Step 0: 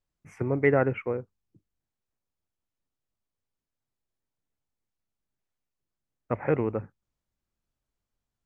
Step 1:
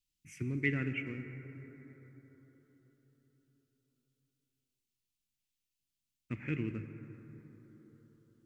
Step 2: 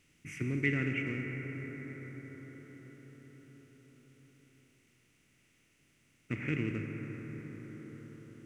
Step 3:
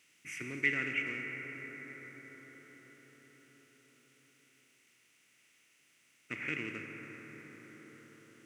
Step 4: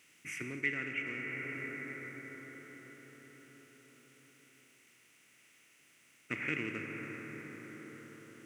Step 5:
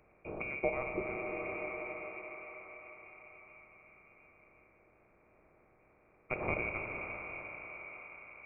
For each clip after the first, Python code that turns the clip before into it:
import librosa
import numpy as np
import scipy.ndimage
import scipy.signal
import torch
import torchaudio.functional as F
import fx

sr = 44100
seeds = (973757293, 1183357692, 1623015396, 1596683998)

y1 = fx.curve_eq(x, sr, hz=(320.0, 500.0, 820.0, 2700.0), db=(0, -21, -25, 11))
y1 = fx.rev_plate(y1, sr, seeds[0], rt60_s=4.6, hf_ratio=0.3, predelay_ms=0, drr_db=7.5)
y1 = y1 * librosa.db_to_amplitude(-6.5)
y2 = fx.bin_compress(y1, sr, power=0.6)
y3 = fx.highpass(y2, sr, hz=1100.0, slope=6)
y3 = y3 * librosa.db_to_amplitude(4.0)
y4 = fx.peak_eq(y3, sr, hz=4400.0, db=-4.0, octaves=1.8)
y4 = fx.rider(y4, sr, range_db=4, speed_s=0.5)
y4 = y4 * librosa.db_to_amplitude(1.5)
y5 = fx.freq_invert(y4, sr, carrier_hz=2600)
y5 = y5 * librosa.db_to_amplitude(1.5)